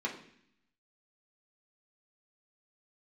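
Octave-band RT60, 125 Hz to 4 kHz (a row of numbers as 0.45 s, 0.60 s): 0.95 s, 0.95 s, 0.65 s, 0.65 s, 0.80 s, 0.80 s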